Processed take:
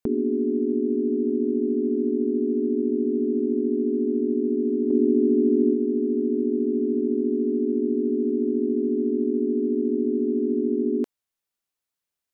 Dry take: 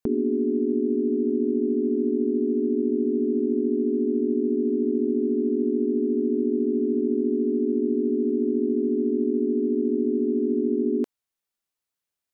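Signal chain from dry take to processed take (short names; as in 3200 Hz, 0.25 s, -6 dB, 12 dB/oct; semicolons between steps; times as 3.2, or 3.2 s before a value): 4.9–5.74 dynamic EQ 310 Hz, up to +5 dB, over -34 dBFS, Q 1.1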